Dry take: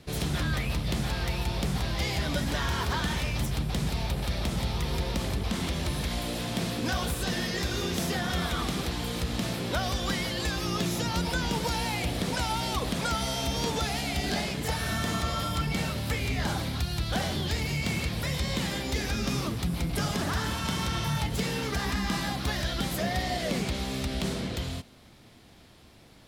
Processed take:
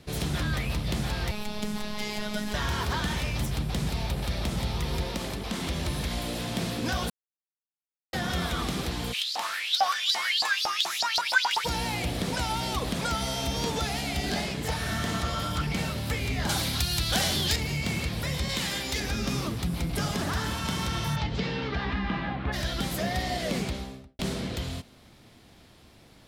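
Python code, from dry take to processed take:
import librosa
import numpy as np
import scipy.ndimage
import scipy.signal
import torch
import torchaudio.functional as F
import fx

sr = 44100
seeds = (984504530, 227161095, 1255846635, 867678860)

y = fx.robotise(x, sr, hz=210.0, at=(1.31, 2.54))
y = fx.peak_eq(y, sr, hz=78.0, db=-11.0, octaves=1.3, at=(5.07, 5.66))
y = fx.filter_lfo_highpass(y, sr, shape='saw_up', hz=fx.line((9.12, 1.6), (11.64, 9.4)), low_hz=730.0, high_hz=5100.0, q=7.0, at=(9.12, 11.64), fade=0.02)
y = fx.doppler_dist(y, sr, depth_ms=0.14, at=(14.46, 15.79))
y = fx.high_shelf(y, sr, hz=2300.0, db=11.5, at=(16.49, 17.56))
y = fx.tilt_shelf(y, sr, db=-4.5, hz=970.0, at=(18.49, 19.0))
y = fx.lowpass(y, sr, hz=fx.line((21.15, 5700.0), (22.52, 2400.0)), slope=24, at=(21.15, 22.52), fade=0.02)
y = fx.studio_fade_out(y, sr, start_s=23.58, length_s=0.61)
y = fx.edit(y, sr, fx.silence(start_s=7.1, length_s=1.03), tone=tone)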